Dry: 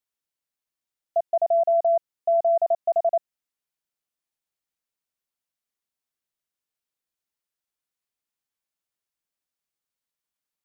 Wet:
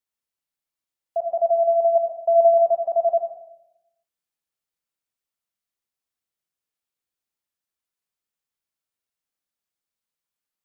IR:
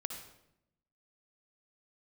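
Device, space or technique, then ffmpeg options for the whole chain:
bathroom: -filter_complex "[0:a]asettb=1/sr,asplit=3[a][b][c];[a]atrim=end=1.954[d];[b]atrim=start=1.95:end=2.54,asetpts=PTS-STARTPTS,afade=t=in:d=0.004:c=qsin,afade=t=out:st=0.586:d=0.004:c=qsin,aecho=1:1:3.1:0.78,atrim=end_sample=26019[e];[c]atrim=start=2.536[f];[d][e]acrossfade=d=0.004:c1=hsin:c2=qsin[g];[g][f]acrossfade=d=0.004:c1=qsin:c2=hsin[h];[1:a]atrim=start_sample=2205[i];[h][i]afir=irnorm=-1:irlink=0"

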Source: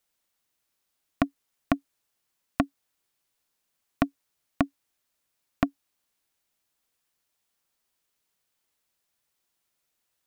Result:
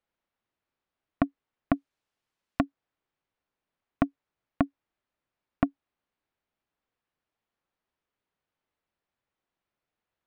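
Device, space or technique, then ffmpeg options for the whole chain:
phone in a pocket: -filter_complex "[0:a]asettb=1/sr,asplit=3[a][b][c];[a]atrim=end=1.754[d];[b]atrim=start=1.75:end=2.63,asetpts=PTS-STARTPTS,afade=t=in:d=0.004:c=qsin,afade=t=out:st=0.876:d=0.004:c=qsin,aemphasis=mode=production:type=75fm[e];[c]atrim=start=2.626[f];[d][e]acrossfade=d=0.004:c1=hsin:c2=qsin[g];[g][f]acrossfade=d=0.004:c1=qsin:c2=hsin,lowpass=3.3k,highshelf=f=2.1k:g=-9"

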